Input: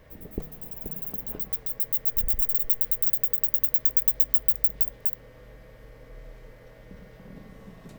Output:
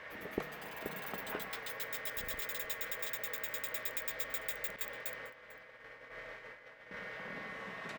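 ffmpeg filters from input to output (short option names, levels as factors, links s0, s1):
-filter_complex "[0:a]asettb=1/sr,asplit=3[s0][s1][s2];[s0]atrim=end=4.764[s3];[s1]atrim=start=4.76:end=6.94,asetpts=PTS-STARTPTS,afade=t=in:d=0.004:c=qsin,afade=t=out:st=2.176:d=0.004:c=qsin,agate=range=0.0224:threshold=0.01:ratio=3:detection=peak[s4];[s2]atrim=start=6.936[s5];[s3][s4]acrossfade=d=0.004:c1=hsin:c2=qsin[s6];[s6][s5]acrossfade=d=0.004:c1=qsin:c2=hsin,bandpass=f=1800:t=q:w=1.3:csg=0,aecho=1:1:447:0.0944,volume=5.31"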